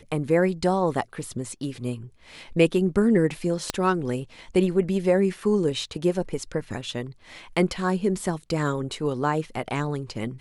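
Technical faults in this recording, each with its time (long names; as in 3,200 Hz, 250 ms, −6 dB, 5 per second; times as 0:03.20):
0:03.70: click −9 dBFS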